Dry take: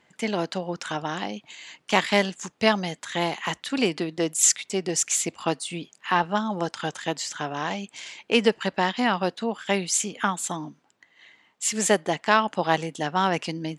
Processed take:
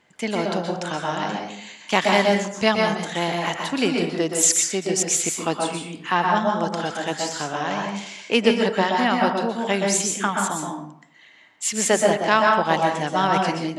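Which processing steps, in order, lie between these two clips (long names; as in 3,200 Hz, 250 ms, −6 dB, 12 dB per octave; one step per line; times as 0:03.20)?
dense smooth reverb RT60 0.64 s, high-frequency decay 0.55×, pre-delay 110 ms, DRR 0.5 dB
level +1 dB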